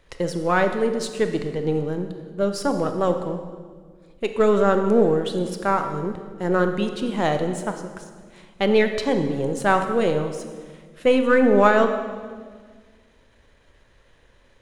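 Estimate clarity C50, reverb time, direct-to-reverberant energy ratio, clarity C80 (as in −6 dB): 7.5 dB, 1.7 s, 6.5 dB, 9.5 dB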